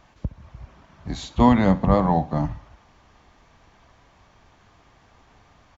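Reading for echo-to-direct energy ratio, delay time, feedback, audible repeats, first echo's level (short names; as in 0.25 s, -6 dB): -18.0 dB, 66 ms, 35%, 2, -18.5 dB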